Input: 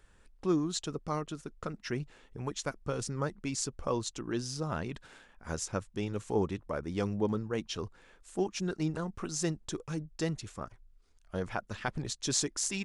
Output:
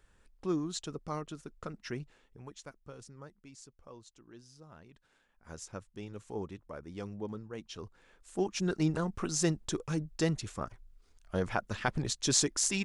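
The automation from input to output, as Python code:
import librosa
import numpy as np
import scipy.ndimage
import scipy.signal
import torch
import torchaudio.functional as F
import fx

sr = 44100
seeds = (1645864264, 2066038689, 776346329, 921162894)

y = fx.gain(x, sr, db=fx.line((1.91, -3.5), (2.47, -11.5), (3.74, -19.5), (4.89, -19.5), (5.62, -9.0), (7.6, -9.0), (8.73, 3.0)))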